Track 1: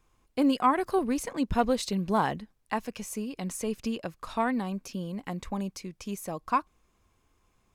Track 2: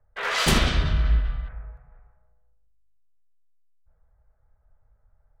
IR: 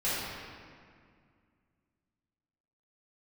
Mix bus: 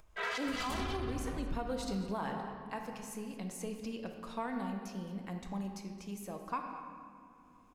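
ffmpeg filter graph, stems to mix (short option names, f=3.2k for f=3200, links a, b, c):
-filter_complex "[0:a]volume=-10.5dB,asplit=4[a][b][c][d];[b]volume=-12dB[e];[c]volume=-16.5dB[f];[1:a]asoftclip=type=tanh:threshold=-17dB,asplit=2[g][h];[h]adelay=2.7,afreqshift=0.58[i];[g][i]amix=inputs=2:normalize=1,volume=-3.5dB,asplit=3[j][k][l];[k]volume=-23.5dB[m];[l]volume=-5dB[n];[d]apad=whole_len=238294[o];[j][o]sidechaincompress=threshold=-52dB:ratio=8:attack=16:release=390[p];[2:a]atrim=start_sample=2205[q];[e][m]amix=inputs=2:normalize=0[r];[r][q]afir=irnorm=-1:irlink=0[s];[f][n]amix=inputs=2:normalize=0,aecho=0:1:220:1[t];[a][p][s][t]amix=inputs=4:normalize=0,acompressor=mode=upward:threshold=-53dB:ratio=2.5,alimiter=level_in=3dB:limit=-24dB:level=0:latency=1:release=123,volume=-3dB"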